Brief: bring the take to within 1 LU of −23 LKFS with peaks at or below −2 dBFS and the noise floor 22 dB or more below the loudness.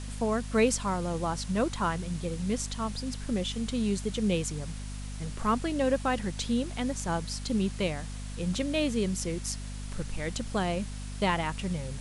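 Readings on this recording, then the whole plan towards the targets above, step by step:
mains hum 50 Hz; hum harmonics up to 250 Hz; level of the hum −36 dBFS; background noise floor −38 dBFS; target noise floor −53 dBFS; integrated loudness −31.0 LKFS; sample peak −13.0 dBFS; target loudness −23.0 LKFS
→ hum removal 50 Hz, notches 5
broadband denoise 15 dB, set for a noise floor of −38 dBFS
level +8 dB

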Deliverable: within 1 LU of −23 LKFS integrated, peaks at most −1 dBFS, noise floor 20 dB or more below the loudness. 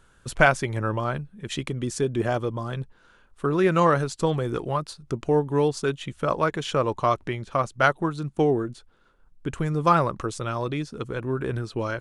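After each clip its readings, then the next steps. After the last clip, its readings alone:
integrated loudness −25.5 LKFS; sample peak −2.5 dBFS; target loudness −23.0 LKFS
→ level +2.5 dB
brickwall limiter −1 dBFS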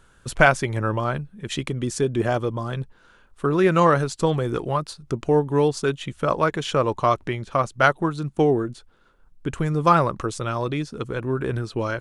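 integrated loudness −23.0 LKFS; sample peak −1.0 dBFS; background noise floor −56 dBFS

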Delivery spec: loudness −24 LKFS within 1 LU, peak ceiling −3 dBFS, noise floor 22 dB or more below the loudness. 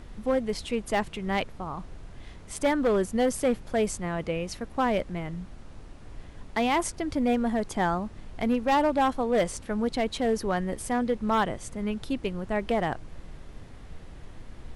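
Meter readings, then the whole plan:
share of clipped samples 1.0%; peaks flattened at −18.0 dBFS; background noise floor −46 dBFS; target noise floor −50 dBFS; integrated loudness −28.0 LKFS; sample peak −18.0 dBFS; target loudness −24.0 LKFS
→ clipped peaks rebuilt −18 dBFS
noise reduction from a noise print 6 dB
level +4 dB

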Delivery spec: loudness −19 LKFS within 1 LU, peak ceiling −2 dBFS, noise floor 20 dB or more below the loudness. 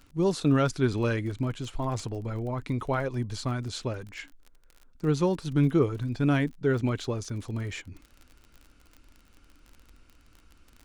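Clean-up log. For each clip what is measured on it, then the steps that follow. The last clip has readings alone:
crackle rate 34 per second; integrated loudness −28.5 LKFS; sample peak −12.0 dBFS; target loudness −19.0 LKFS
→ click removal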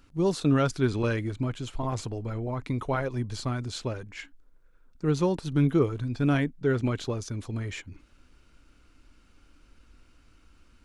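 crackle rate 0.092 per second; integrated loudness −28.5 LKFS; sample peak −12.0 dBFS; target loudness −19.0 LKFS
→ level +9.5 dB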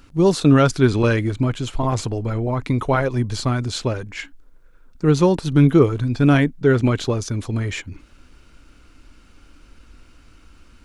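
integrated loudness −19.0 LKFS; sample peak −2.5 dBFS; background noise floor −50 dBFS

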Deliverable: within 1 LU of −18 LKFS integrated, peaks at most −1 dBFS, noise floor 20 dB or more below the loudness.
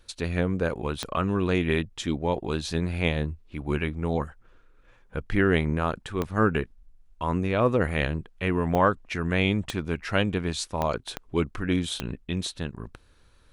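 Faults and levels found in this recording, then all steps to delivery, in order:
number of clicks 7; integrated loudness −27.5 LKFS; sample peak −8.5 dBFS; target loudness −18.0 LKFS
→ click removal
level +9.5 dB
brickwall limiter −1 dBFS

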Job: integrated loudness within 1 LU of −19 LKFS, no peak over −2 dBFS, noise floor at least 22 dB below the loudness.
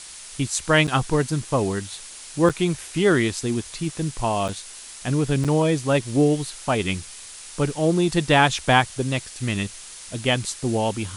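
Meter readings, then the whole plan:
number of dropouts 4; longest dropout 6.9 ms; background noise floor −40 dBFS; target noise floor −45 dBFS; integrated loudness −22.5 LKFS; sample peak −2.0 dBFS; target loudness −19.0 LKFS
→ repair the gap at 0:00.87/0:02.49/0:04.48/0:05.44, 6.9 ms
noise reduction from a noise print 6 dB
level +3.5 dB
brickwall limiter −2 dBFS

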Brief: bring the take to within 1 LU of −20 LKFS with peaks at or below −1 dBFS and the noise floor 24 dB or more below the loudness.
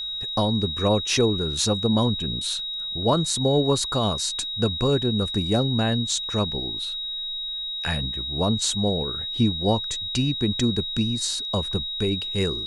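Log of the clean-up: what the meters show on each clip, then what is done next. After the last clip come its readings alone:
interfering tone 3,800 Hz; level of the tone −28 dBFS; integrated loudness −23.5 LKFS; sample peak −9.0 dBFS; target loudness −20.0 LKFS
→ notch filter 3,800 Hz, Q 30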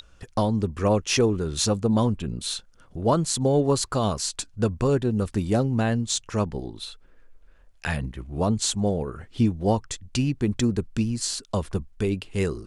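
interfering tone none found; integrated loudness −25.5 LKFS; sample peak −9.5 dBFS; target loudness −20.0 LKFS
→ level +5.5 dB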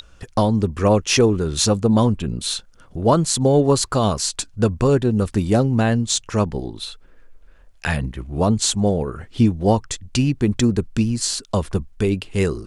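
integrated loudness −20.0 LKFS; sample peak −4.0 dBFS; background noise floor −49 dBFS

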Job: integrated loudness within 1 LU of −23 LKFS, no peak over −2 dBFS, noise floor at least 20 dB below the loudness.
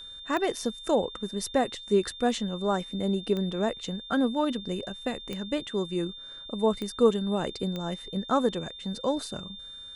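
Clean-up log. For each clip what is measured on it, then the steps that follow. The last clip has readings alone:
number of clicks 5; interfering tone 3,600 Hz; level of the tone −41 dBFS; integrated loudness −29.0 LKFS; sample peak −9.5 dBFS; target loudness −23.0 LKFS
→ click removal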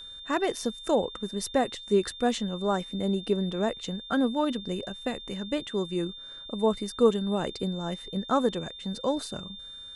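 number of clicks 0; interfering tone 3,600 Hz; level of the tone −41 dBFS
→ notch filter 3,600 Hz, Q 30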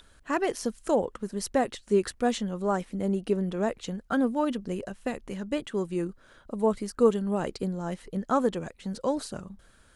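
interfering tone none found; integrated loudness −29.5 LKFS; sample peak −9.5 dBFS; target loudness −23.0 LKFS
→ level +6.5 dB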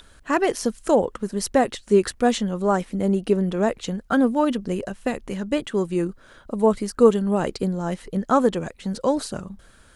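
integrated loudness −23.0 LKFS; sample peak −3.0 dBFS; background noise floor −53 dBFS

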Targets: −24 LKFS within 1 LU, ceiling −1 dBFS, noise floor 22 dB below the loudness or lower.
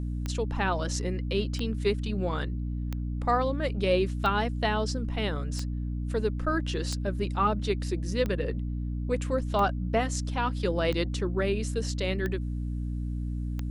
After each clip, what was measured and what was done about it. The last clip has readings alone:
number of clicks 11; mains hum 60 Hz; hum harmonics up to 300 Hz; level of the hum −29 dBFS; integrated loudness −29.5 LKFS; sample peak −12.5 dBFS; target loudness −24.0 LKFS
→ click removal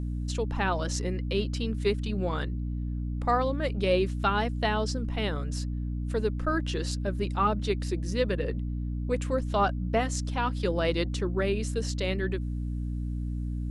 number of clicks 0; mains hum 60 Hz; hum harmonics up to 300 Hz; level of the hum −29 dBFS
→ mains-hum notches 60/120/180/240/300 Hz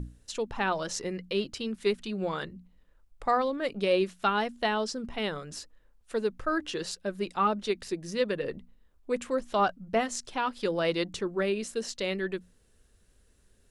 mains hum none found; integrated loudness −30.5 LKFS; sample peak −14.0 dBFS; target loudness −24.0 LKFS
→ level +6.5 dB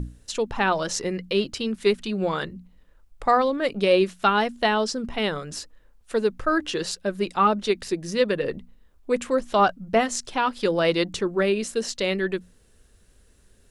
integrated loudness −24.0 LKFS; sample peak −7.5 dBFS; background noise floor −58 dBFS

